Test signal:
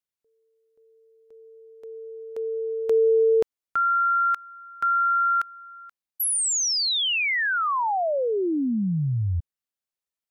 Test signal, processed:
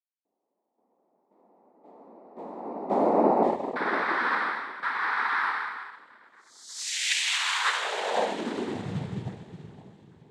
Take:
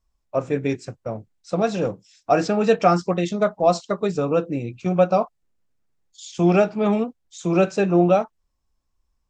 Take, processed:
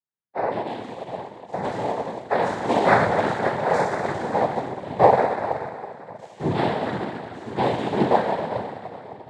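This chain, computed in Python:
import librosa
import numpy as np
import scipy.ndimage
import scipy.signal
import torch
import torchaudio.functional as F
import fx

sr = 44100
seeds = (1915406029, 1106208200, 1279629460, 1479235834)

p1 = fx.spec_trails(x, sr, decay_s=2.37)
p2 = scipy.signal.sosfilt(scipy.signal.butter(4, 4400.0, 'lowpass', fs=sr, output='sos'), p1)
p3 = fx.small_body(p2, sr, hz=(530.0, 1200.0, 2900.0), ring_ms=45, db=7)
p4 = p3 + fx.echo_split(p3, sr, split_hz=540.0, low_ms=533, high_ms=409, feedback_pct=52, wet_db=-10.5, dry=0)
p5 = fx.rev_spring(p4, sr, rt60_s=2.2, pass_ms=(46, 58), chirp_ms=45, drr_db=10.5)
p6 = fx.noise_vocoder(p5, sr, seeds[0], bands=6)
p7 = fx.upward_expand(p6, sr, threshold_db=-33.0, expansion=1.5)
y = p7 * librosa.db_to_amplitude(-5.5)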